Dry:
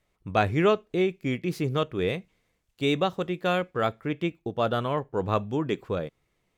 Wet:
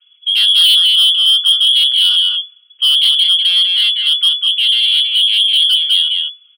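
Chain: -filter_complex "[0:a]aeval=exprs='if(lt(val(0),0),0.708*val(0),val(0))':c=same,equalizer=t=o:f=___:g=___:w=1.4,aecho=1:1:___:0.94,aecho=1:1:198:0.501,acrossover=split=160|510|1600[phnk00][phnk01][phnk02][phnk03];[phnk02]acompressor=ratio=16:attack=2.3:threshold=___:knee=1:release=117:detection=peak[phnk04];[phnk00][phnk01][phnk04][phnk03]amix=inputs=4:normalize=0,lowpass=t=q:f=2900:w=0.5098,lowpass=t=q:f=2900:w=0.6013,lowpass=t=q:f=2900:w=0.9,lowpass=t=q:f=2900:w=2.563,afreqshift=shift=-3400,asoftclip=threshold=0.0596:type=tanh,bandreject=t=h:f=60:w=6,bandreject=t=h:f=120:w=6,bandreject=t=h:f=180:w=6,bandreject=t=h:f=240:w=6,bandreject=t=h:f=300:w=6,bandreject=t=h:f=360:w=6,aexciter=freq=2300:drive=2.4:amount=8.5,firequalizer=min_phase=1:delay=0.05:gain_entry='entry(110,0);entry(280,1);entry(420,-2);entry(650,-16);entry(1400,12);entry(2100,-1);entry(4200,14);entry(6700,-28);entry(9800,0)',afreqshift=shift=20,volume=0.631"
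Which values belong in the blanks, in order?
77, 10.5, 4.6, 0.00891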